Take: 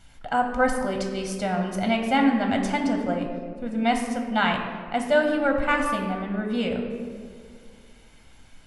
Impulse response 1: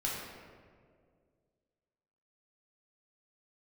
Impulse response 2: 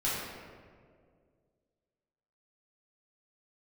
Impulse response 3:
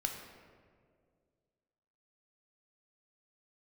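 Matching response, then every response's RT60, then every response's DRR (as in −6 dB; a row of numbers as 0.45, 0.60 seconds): 3; 2.0, 2.0, 2.0 seconds; −5.0, −9.5, 2.5 decibels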